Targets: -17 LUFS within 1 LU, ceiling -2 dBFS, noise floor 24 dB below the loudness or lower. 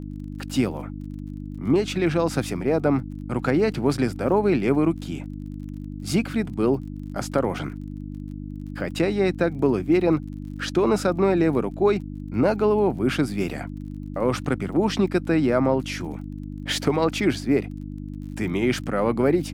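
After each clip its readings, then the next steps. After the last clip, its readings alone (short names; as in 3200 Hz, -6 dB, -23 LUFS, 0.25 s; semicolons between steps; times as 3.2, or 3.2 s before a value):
ticks 33/s; hum 50 Hz; harmonics up to 300 Hz; hum level -32 dBFS; loudness -23.5 LUFS; peak -7.5 dBFS; loudness target -17.0 LUFS
-> de-click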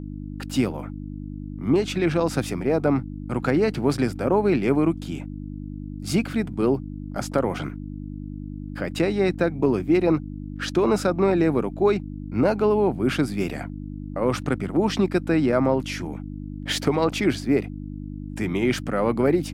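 ticks 0.10/s; hum 50 Hz; harmonics up to 300 Hz; hum level -32 dBFS
-> de-hum 50 Hz, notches 6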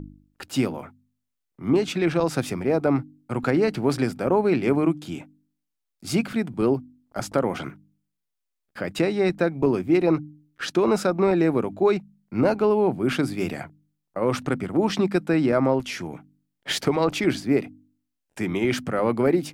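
hum none; loudness -24.0 LUFS; peak -8.0 dBFS; loudness target -17.0 LUFS
-> gain +7 dB; limiter -2 dBFS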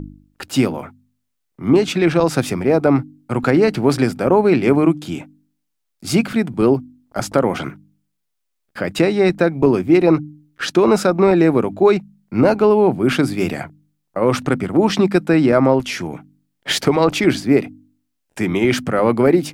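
loudness -17.0 LUFS; peak -2.0 dBFS; noise floor -74 dBFS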